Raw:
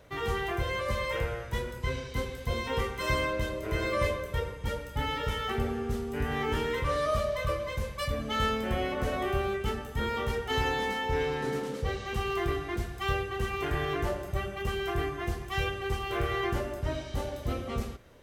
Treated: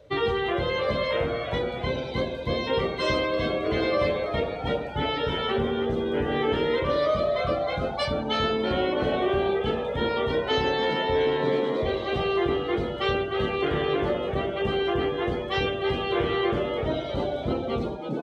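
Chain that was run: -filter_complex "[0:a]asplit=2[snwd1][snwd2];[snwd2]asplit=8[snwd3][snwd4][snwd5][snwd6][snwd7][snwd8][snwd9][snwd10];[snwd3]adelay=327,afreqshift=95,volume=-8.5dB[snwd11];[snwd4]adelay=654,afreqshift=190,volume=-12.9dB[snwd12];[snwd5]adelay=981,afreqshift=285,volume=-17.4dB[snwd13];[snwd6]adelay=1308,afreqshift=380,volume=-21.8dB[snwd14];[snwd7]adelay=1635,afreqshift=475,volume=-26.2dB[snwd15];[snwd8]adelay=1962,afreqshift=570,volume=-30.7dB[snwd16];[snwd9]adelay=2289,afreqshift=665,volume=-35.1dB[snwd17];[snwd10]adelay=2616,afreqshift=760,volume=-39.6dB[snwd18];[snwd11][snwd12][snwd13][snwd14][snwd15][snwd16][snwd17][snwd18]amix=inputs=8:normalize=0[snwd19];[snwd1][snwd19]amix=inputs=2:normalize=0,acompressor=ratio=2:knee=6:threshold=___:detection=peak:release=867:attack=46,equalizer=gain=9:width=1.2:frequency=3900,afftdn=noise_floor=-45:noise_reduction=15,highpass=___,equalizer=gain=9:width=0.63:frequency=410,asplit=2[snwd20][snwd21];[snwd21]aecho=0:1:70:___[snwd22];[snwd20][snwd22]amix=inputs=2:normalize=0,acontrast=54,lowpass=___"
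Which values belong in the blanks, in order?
-40dB, 60, 0.0794, 10000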